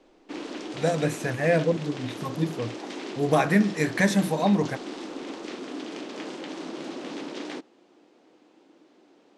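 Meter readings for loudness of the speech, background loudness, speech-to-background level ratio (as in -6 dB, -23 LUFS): -25.5 LUFS, -36.5 LUFS, 11.0 dB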